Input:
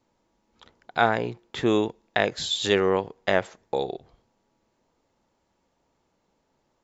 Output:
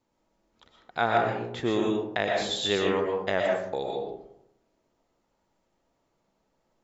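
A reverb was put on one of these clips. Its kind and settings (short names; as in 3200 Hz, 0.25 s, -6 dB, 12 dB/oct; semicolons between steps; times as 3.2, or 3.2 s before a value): digital reverb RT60 0.77 s, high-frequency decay 0.4×, pre-delay 80 ms, DRR -0.5 dB; gain -5.5 dB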